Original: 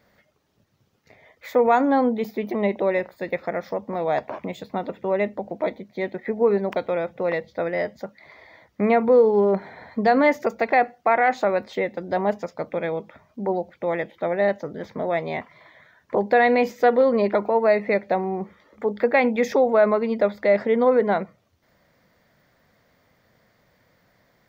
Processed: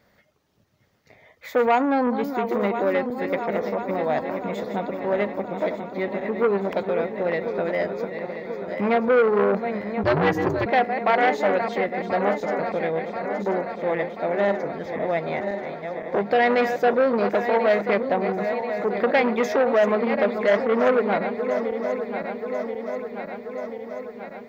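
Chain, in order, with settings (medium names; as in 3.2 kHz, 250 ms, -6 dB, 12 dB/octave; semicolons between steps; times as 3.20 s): backward echo that repeats 517 ms, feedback 79%, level -9 dB; 10.03–10.66 s: frequency shift -110 Hz; transformer saturation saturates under 1.1 kHz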